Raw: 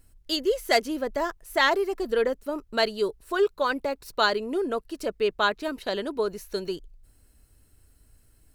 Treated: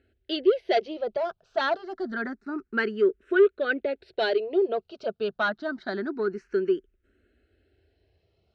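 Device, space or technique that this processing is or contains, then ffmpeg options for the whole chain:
barber-pole phaser into a guitar amplifier: -filter_complex "[0:a]asplit=2[s0][s1];[s1]afreqshift=0.27[s2];[s0][s2]amix=inputs=2:normalize=1,asoftclip=type=tanh:threshold=0.1,highpass=89,equalizer=f=120:t=q:w=4:g=-8,equalizer=f=220:t=q:w=4:g=5,equalizer=f=380:t=q:w=4:g=10,equalizer=f=670:t=q:w=4:g=5,equalizer=f=1000:t=q:w=4:g=-9,equalizer=f=1500:t=q:w=4:g=9,lowpass=f=4100:w=0.5412,lowpass=f=4100:w=1.3066"

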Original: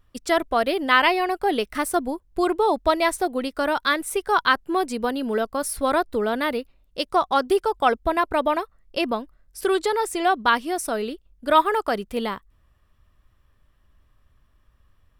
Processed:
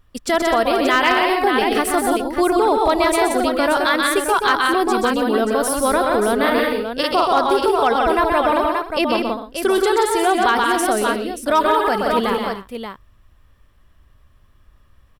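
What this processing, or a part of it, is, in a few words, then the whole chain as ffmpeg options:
clipper into limiter: -filter_complex "[0:a]asettb=1/sr,asplit=3[s0][s1][s2];[s0]atrim=end=6.364[s3];[s1]atrim=start=6.36:end=7.39,asetpts=PTS-STARTPTS,afade=t=in:d=0.004:c=qsin,afade=t=out:st=1.026:d=0.004:c=qsin,asplit=2[s4][s5];[s5]adelay=44,volume=0.794[s6];[s4][s6]amix=inputs=2:normalize=0,atrim=end_sample=45423[s7];[s2]atrim=start=7.386[s8];[s3][s7]acrossfade=d=0.004:c1=hsin:c2=qsin[s9];[s9][s8]acrossfade=d=0.004:c1=qsin:c2=hsin,aecho=1:1:128|179|253|295|581:0.501|0.562|0.2|0.126|0.376,asoftclip=type=hard:threshold=0.398,alimiter=limit=0.237:level=0:latency=1:release=35,volume=1.78"

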